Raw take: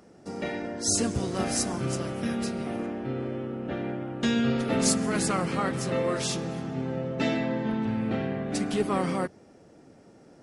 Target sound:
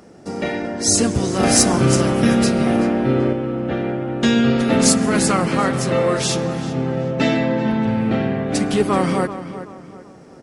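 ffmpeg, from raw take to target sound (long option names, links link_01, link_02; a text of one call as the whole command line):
ffmpeg -i in.wav -filter_complex "[0:a]asettb=1/sr,asplit=3[link_01][link_02][link_03];[link_01]atrim=end=1.434[link_04];[link_02]atrim=start=1.43:end=3.33,asetpts=PTS-STARTPTS,afade=type=in:duration=0.004:curve=qsin,afade=type=out:start_time=1.896:duration=0.004:curve=qsin,acontrast=26[link_05];[link_03]atrim=start=3.326[link_06];[link_04][link_05]acrossfade=duration=0.004:curve1=hsin:curve2=qsin[link_07];[link_07][link_06]acrossfade=duration=0.004:curve1=qsin:curve2=hsin,asoftclip=type=hard:threshold=-12.5dB,asplit=2[link_08][link_09];[link_09]adelay=382,lowpass=frequency=3200:poles=1,volume=-12dB,asplit=2[link_10][link_11];[link_11]adelay=382,lowpass=frequency=3200:poles=1,volume=0.38,asplit=2[link_12][link_13];[link_13]adelay=382,lowpass=frequency=3200:poles=1,volume=0.38,asplit=2[link_14][link_15];[link_15]adelay=382,lowpass=frequency=3200:poles=1,volume=0.38[link_16];[link_10][link_12][link_14][link_16]amix=inputs=4:normalize=0[link_17];[link_08][link_17]amix=inputs=2:normalize=0,volume=9dB" out.wav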